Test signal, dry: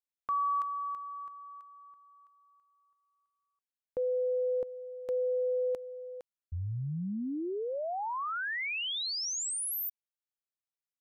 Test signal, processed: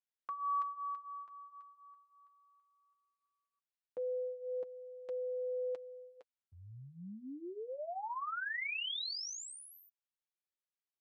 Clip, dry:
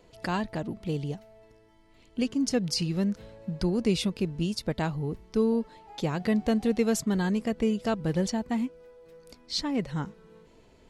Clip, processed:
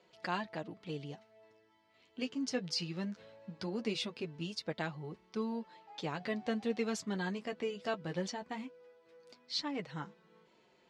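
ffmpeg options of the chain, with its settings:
ffmpeg -i in.wav -af "lowshelf=frequency=460:gain=-10.5,flanger=delay=5.4:depth=6.2:regen=-24:speed=0.19:shape=sinusoidal,highpass=130,lowpass=5000" out.wav

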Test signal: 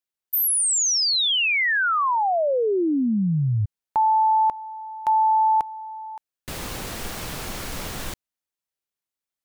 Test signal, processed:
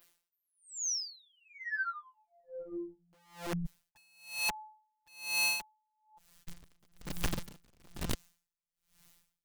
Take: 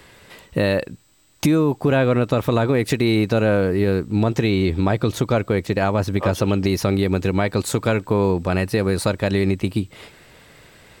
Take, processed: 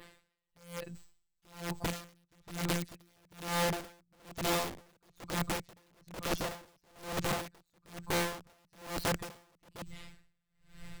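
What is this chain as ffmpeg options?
ffmpeg -i in.wav -filter_complex "[0:a]acrossover=split=670|6700[link_01][link_02][link_03];[link_03]acompressor=threshold=-49dB:ratio=8:attack=2.4:release=161:knee=1:detection=peak[link_04];[link_01][link_02][link_04]amix=inputs=3:normalize=0,adynamicequalizer=threshold=0.00355:dfrequency=6600:dqfactor=1.6:tfrequency=6600:tqfactor=1.6:attack=5:release=100:ratio=0.375:range=2:mode=boostabove:tftype=bell,areverse,acompressor=mode=upward:threshold=-32dB:ratio=4:attack=0.25:release=31:knee=2.83:detection=peak,areverse,aeval=exprs='0.531*(cos(1*acos(clip(val(0)/0.531,-1,1)))-cos(1*PI/2))+0.0119*(cos(7*acos(clip(val(0)/0.531,-1,1)))-cos(7*PI/2))':channel_layout=same,aeval=exprs='0.2*(abs(mod(val(0)/0.2+3,4)-2)-1)':channel_layout=same,afftfilt=real='hypot(re,im)*cos(PI*b)':imag='0':win_size=1024:overlap=0.75,asubboost=boost=10.5:cutoff=120,aeval=exprs='(mod(8.41*val(0)+1,2)-1)/8.41':channel_layout=same,aeval=exprs='val(0)*pow(10,-38*(0.5-0.5*cos(2*PI*1.1*n/s))/20)':channel_layout=same,volume=-7dB" out.wav

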